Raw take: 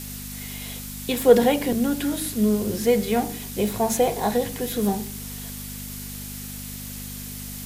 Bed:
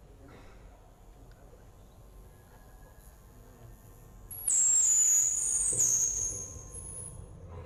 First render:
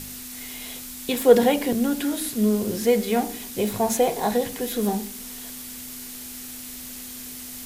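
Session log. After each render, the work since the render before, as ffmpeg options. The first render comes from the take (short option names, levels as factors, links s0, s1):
-af "bandreject=f=50:t=h:w=4,bandreject=f=100:t=h:w=4,bandreject=f=150:t=h:w=4,bandreject=f=200:t=h:w=4"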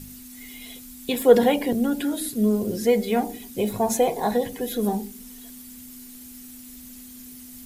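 -af "afftdn=nr=11:nf=-38"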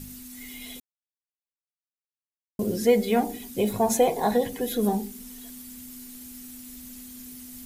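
-filter_complex "[0:a]asplit=3[s0][s1][s2];[s0]atrim=end=0.8,asetpts=PTS-STARTPTS,afade=t=out:st=0.796:d=0.004:c=hsin[s3];[s1]atrim=start=0.8:end=2.59,asetpts=PTS-STARTPTS,volume=0[s4];[s2]atrim=start=2.59,asetpts=PTS-STARTPTS,afade=t=in:d=0.004:c=hsin[s5];[s3][s4][s5]concat=n=3:v=0:a=1"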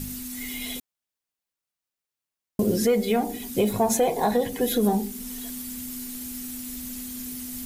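-af "acontrast=87,alimiter=limit=0.224:level=0:latency=1:release=459"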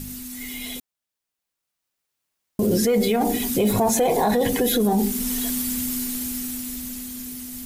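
-af "alimiter=limit=0.0708:level=0:latency=1:release=22,dynaudnorm=f=280:g=13:m=3.35"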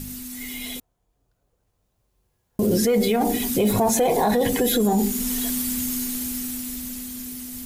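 -filter_complex "[1:a]volume=0.133[s0];[0:a][s0]amix=inputs=2:normalize=0"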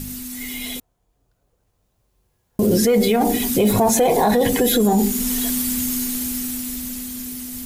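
-af "volume=1.5"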